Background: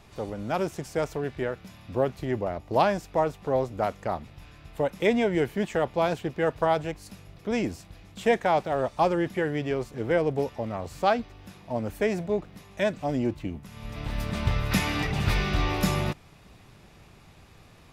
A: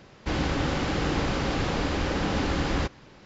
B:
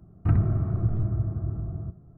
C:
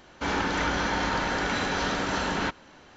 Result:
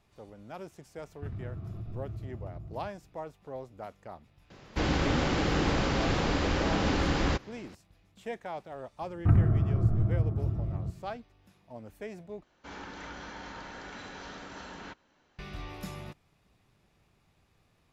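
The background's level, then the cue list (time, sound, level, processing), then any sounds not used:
background -15.5 dB
0.97 add B -11.5 dB + compressor, threshold -23 dBFS
4.5 add A -1 dB
9 add B -0.5 dB
12.43 replace with C -16.5 dB

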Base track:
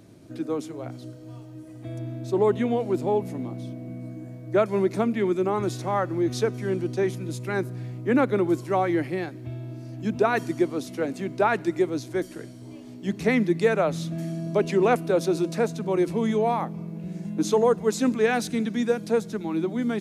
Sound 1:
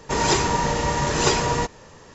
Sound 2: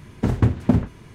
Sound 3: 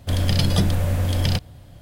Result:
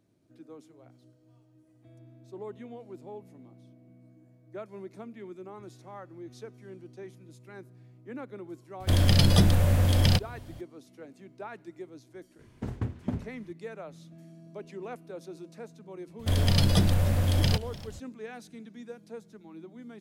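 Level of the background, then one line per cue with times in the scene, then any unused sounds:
base track -19.5 dB
8.8 add 3 -1 dB
12.39 add 2 -14.5 dB
16.19 add 3 -3.5 dB + warbling echo 0.295 s, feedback 45%, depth 145 cents, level -18.5 dB
not used: 1

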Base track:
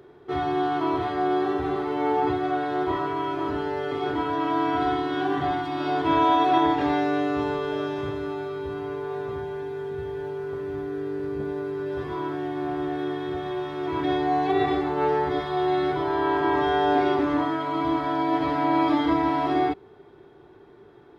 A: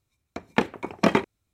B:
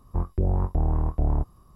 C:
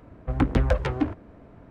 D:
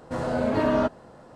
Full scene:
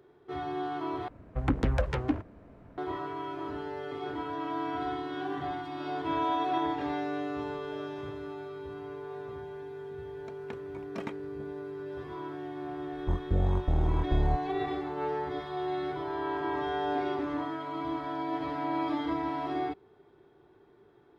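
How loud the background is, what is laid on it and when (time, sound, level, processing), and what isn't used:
base track -9.5 dB
1.08 replace with C -4 dB + limiter -11 dBFS
9.92 add A -12 dB + noise-modulated level
12.93 add B -3.5 dB + decimation joined by straight lines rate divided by 6×
not used: D

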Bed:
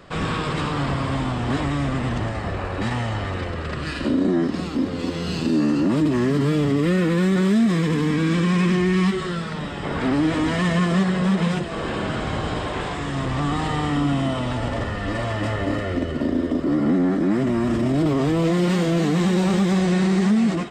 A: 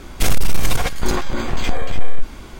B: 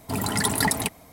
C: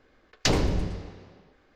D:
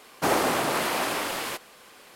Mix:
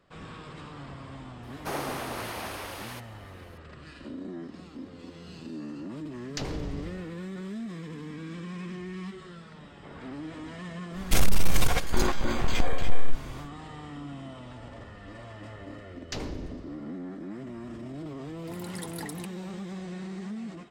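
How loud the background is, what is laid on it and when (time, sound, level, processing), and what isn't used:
bed -19 dB
1.43 add D -10 dB + notch 7500 Hz, Q 7.9
5.92 add C -5 dB + compressor, threshold -25 dBFS
10.91 add A -5 dB, fades 0.10 s
15.67 add C -12.5 dB
18.38 add B -18 dB

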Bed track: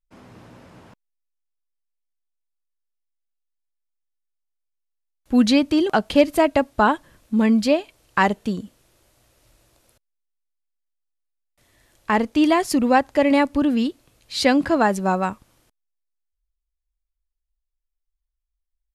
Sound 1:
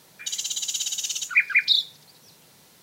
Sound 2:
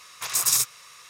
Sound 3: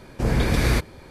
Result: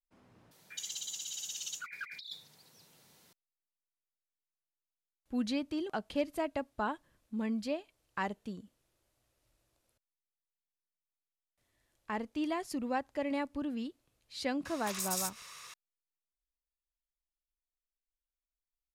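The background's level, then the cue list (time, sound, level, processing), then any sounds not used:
bed track -17.5 dB
0.51 replace with 1 -13.5 dB + negative-ratio compressor -29 dBFS
14.65 add 2 -2 dB + compressor 2:1, threshold -40 dBFS
not used: 3

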